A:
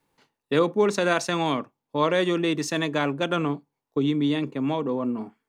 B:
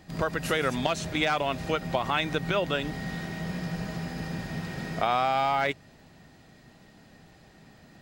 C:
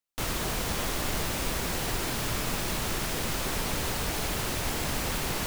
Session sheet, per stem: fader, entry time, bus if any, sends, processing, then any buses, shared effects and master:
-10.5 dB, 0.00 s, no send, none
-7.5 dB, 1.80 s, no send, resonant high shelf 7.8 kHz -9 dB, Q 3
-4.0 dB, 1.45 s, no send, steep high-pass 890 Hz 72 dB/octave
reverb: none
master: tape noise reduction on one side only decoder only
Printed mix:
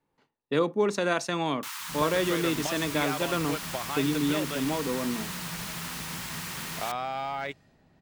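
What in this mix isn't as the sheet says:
stem A -10.5 dB -> -4.0 dB; stem B: missing resonant high shelf 7.8 kHz -9 dB, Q 3

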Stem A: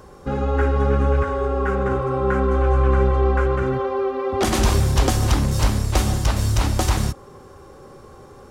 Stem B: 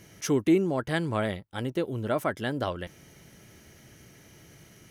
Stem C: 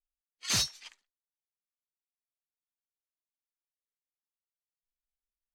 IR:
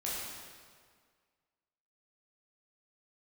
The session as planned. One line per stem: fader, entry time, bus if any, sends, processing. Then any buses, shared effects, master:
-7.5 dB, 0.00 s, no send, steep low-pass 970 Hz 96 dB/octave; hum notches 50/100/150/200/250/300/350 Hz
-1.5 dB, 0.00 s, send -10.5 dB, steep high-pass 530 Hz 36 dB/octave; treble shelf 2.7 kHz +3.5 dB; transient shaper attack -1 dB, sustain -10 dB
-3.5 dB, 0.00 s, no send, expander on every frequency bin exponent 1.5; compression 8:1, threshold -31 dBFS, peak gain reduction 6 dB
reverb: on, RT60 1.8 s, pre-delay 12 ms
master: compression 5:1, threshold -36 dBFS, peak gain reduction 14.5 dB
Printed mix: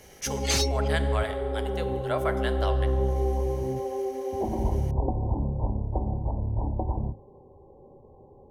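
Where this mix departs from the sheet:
stem C -3.5 dB -> +7.5 dB; master: missing compression 5:1, threshold -36 dBFS, peak gain reduction 14.5 dB

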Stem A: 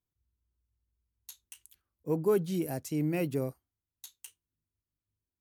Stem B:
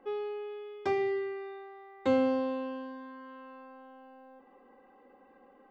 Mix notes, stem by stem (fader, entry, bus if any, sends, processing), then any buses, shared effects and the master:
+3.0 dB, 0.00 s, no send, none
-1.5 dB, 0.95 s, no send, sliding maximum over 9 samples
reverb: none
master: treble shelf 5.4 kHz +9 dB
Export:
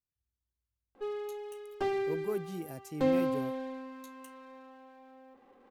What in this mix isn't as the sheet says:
stem A +3.0 dB -> -8.5 dB; master: missing treble shelf 5.4 kHz +9 dB

